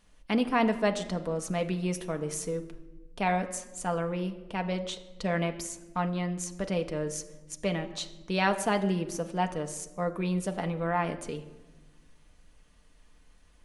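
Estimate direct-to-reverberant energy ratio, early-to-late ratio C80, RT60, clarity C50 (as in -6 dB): 5.0 dB, 15.0 dB, 1.2 s, 13.5 dB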